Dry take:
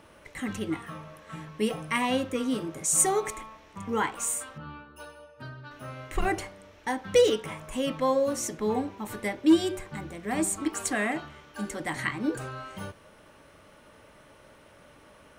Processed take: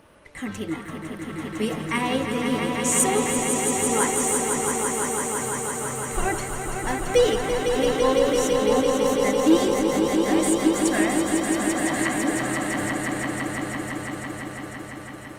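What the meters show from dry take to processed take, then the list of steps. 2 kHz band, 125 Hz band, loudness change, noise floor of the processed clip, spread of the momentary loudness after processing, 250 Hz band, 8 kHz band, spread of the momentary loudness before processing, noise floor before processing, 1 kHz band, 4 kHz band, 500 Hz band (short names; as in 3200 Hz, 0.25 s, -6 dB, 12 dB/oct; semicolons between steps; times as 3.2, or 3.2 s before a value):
+7.0 dB, +7.5 dB, +5.5 dB, -38 dBFS, 13 LU, +7.0 dB, +6.5 dB, 21 LU, -55 dBFS, +7.0 dB, +6.5 dB, +7.0 dB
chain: swelling echo 0.168 s, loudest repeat 5, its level -6 dB; gain +1.5 dB; Opus 32 kbps 48000 Hz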